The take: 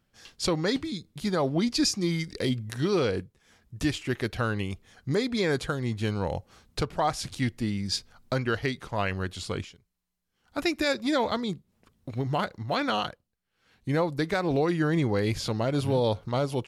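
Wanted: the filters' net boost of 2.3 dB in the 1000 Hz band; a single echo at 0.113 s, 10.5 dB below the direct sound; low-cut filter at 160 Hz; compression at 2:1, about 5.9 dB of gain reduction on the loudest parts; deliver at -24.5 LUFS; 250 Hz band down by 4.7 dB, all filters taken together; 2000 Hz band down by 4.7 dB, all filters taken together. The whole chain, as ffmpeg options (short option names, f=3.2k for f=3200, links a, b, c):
-af "highpass=160,equalizer=f=250:t=o:g=-5.5,equalizer=f=1k:t=o:g=5.5,equalizer=f=2k:t=o:g=-8.5,acompressor=threshold=-31dB:ratio=2,aecho=1:1:113:0.299,volume=9.5dB"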